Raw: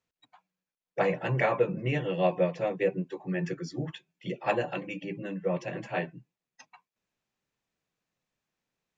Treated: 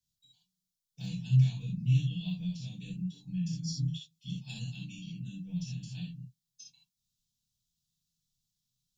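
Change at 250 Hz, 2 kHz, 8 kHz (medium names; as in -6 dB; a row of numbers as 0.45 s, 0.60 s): -2.0 dB, -18.0 dB, no reading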